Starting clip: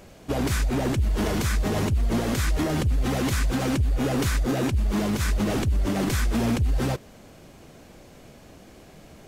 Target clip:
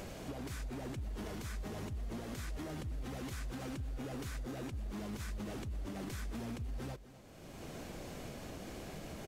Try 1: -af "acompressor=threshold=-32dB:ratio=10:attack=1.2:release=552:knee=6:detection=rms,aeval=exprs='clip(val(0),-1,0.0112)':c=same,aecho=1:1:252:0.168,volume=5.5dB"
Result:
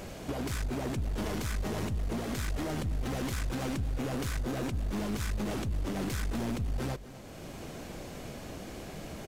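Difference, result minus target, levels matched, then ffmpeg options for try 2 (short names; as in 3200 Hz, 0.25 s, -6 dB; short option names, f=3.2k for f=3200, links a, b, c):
compressor: peak gain reduction -10.5 dB
-af "acompressor=threshold=-43.5dB:ratio=10:attack=1.2:release=552:knee=6:detection=rms,aeval=exprs='clip(val(0),-1,0.0112)':c=same,aecho=1:1:252:0.168,volume=5.5dB"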